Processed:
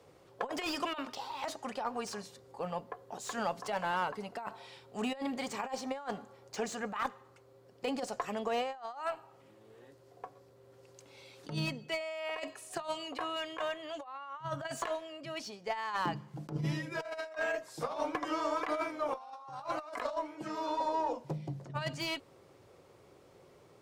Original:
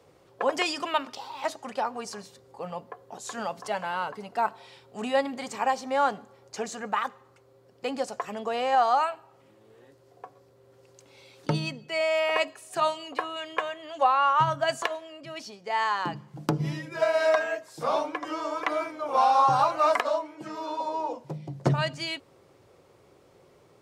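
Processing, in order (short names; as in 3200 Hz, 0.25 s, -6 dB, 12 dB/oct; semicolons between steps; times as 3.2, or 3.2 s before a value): negative-ratio compressor -29 dBFS, ratio -0.5; added harmonics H 6 -33 dB, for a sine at -13 dBFS; slew limiter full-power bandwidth 110 Hz; gain -5.5 dB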